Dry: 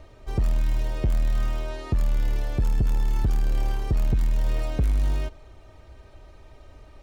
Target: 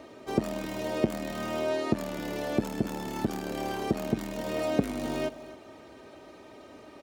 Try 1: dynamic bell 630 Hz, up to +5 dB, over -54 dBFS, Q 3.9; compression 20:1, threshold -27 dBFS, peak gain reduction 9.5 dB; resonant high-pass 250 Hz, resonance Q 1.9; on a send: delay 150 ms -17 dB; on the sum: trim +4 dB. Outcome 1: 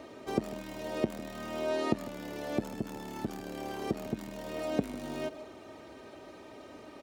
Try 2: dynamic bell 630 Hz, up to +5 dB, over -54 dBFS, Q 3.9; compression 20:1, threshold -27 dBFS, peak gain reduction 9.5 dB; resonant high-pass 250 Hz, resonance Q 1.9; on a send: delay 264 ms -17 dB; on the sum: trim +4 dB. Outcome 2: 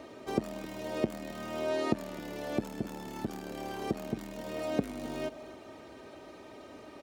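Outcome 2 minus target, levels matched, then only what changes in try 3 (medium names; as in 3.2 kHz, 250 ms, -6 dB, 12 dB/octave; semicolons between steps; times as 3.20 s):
compression: peak gain reduction +7 dB
change: compression 20:1, threshold -19.5 dBFS, peak gain reduction 2.5 dB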